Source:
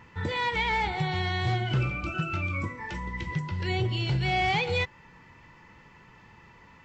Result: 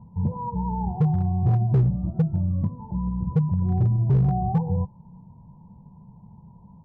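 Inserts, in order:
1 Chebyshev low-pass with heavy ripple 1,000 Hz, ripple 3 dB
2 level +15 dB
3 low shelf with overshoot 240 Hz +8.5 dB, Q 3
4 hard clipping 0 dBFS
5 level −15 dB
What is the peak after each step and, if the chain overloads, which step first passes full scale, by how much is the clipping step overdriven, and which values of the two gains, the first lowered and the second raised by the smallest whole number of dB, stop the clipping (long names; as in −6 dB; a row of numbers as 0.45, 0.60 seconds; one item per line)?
−19.5, −4.5, +7.5, 0.0, −15.0 dBFS
step 3, 7.5 dB
step 2 +7 dB, step 5 −7 dB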